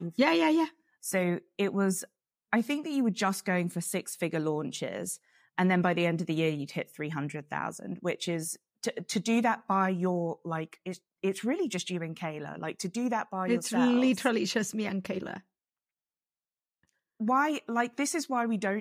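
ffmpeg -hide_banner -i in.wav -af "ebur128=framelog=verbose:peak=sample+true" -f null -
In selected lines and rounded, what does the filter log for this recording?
Integrated loudness:
  I:         -30.4 LUFS
  Threshold: -40.5 LUFS
Loudness range:
  LRA:         4.1 LU
  Threshold: -51.2 LUFS
  LRA low:   -33.8 LUFS
  LRA high:  -29.7 LUFS
Sample peak:
  Peak:      -11.6 dBFS
True peak:
  Peak:      -11.6 dBFS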